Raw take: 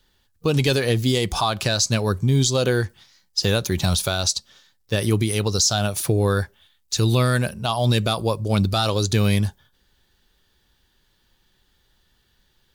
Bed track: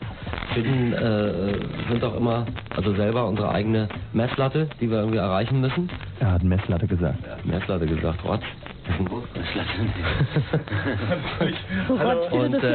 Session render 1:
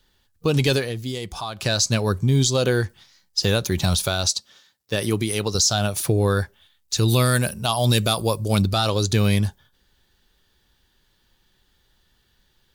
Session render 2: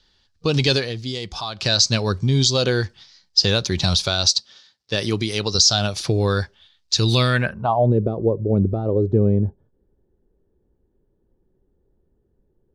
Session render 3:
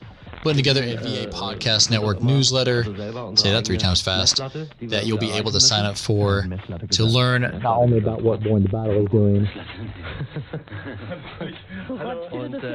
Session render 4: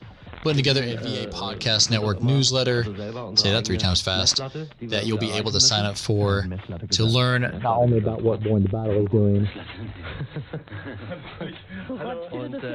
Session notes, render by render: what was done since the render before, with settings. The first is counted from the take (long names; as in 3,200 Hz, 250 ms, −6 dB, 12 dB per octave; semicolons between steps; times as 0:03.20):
0:00.77–0:01.69: duck −9 dB, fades 0.12 s; 0:04.30–0:05.55: high-pass filter 170 Hz 6 dB per octave; 0:07.08–0:08.62: high-shelf EQ 6,500 Hz +12 dB
low-pass filter sweep 4,900 Hz → 420 Hz, 0:07.15–0:07.93
mix in bed track −8 dB
level −2 dB